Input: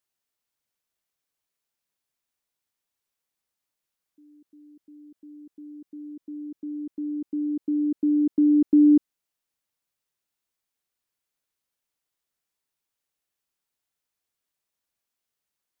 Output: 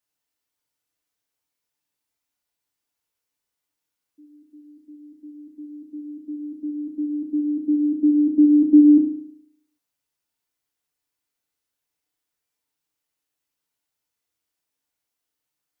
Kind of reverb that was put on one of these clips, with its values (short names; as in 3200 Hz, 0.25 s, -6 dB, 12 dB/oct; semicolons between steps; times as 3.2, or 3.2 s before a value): FDN reverb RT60 0.7 s, low-frequency decay 1×, high-frequency decay 0.95×, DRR -1.5 dB; gain -2 dB